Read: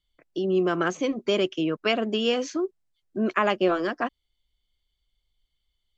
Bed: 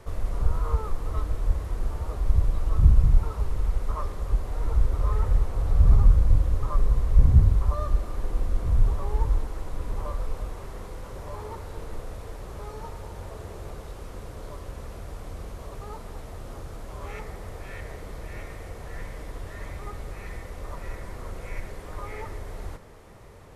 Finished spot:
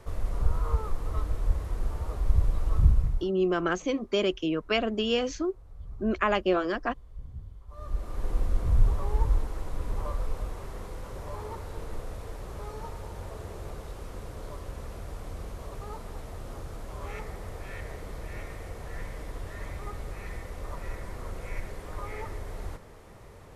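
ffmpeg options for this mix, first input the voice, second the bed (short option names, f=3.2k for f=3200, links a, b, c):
-filter_complex "[0:a]adelay=2850,volume=-2.5dB[a];[1:a]volume=22.5dB,afade=t=out:st=2.77:d=0.55:silence=0.0668344,afade=t=in:st=7.68:d=0.62:silence=0.0595662[b];[a][b]amix=inputs=2:normalize=0"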